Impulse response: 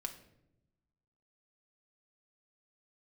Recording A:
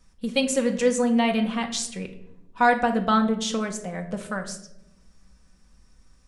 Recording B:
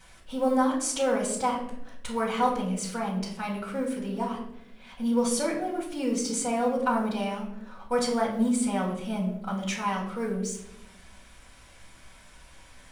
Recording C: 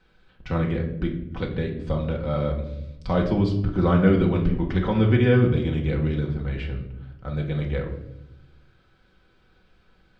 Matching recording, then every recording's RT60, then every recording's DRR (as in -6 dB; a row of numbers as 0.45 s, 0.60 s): A; 0.85 s, 0.85 s, 0.85 s; 3.5 dB, -8.5 dB, -1.5 dB